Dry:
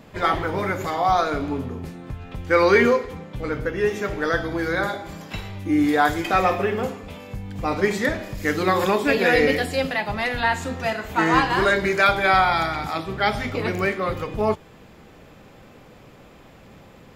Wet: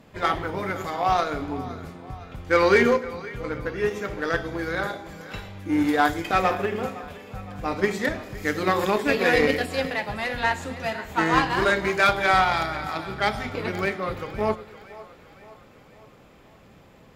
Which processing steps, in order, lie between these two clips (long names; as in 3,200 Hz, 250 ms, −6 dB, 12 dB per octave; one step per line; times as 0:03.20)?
echo with a time of its own for lows and highs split 450 Hz, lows 105 ms, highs 513 ms, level −14 dB
harmonic generator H 7 −26 dB, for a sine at −4.5 dBFS
level −1.5 dB